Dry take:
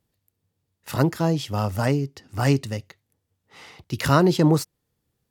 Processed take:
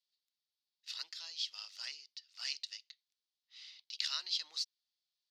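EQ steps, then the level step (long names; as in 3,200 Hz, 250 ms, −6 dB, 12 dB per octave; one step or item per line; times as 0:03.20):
four-pole ladder band-pass 5,100 Hz, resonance 45%
high-frequency loss of the air 240 metres
spectral tilt +4.5 dB per octave
+5.5 dB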